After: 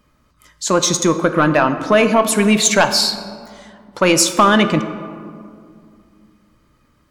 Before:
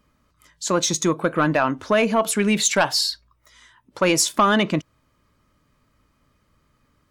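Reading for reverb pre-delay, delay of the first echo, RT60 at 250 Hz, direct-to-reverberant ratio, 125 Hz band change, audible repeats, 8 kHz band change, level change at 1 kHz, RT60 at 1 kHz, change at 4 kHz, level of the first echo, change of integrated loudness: 3 ms, no echo, 3.0 s, 9.0 dB, +5.5 dB, no echo, +5.0 dB, +5.5 dB, 2.1 s, +5.5 dB, no echo, +5.5 dB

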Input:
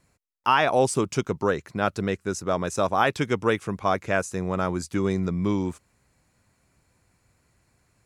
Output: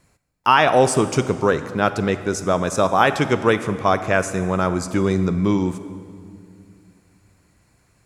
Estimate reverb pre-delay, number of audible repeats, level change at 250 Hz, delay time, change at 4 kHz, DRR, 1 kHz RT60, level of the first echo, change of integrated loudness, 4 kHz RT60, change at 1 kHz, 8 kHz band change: 30 ms, no echo, +6.0 dB, no echo, +6.0 dB, 11.0 dB, 2.1 s, no echo, +6.0 dB, 1.7 s, +6.0 dB, +5.5 dB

